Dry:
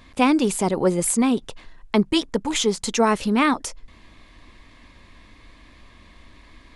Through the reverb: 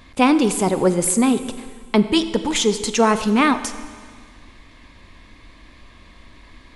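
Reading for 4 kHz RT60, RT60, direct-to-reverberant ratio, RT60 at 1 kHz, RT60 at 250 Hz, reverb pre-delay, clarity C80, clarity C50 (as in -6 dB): 1.8 s, 1.8 s, 11.0 dB, 1.8 s, 1.9 s, 24 ms, 13.0 dB, 12.0 dB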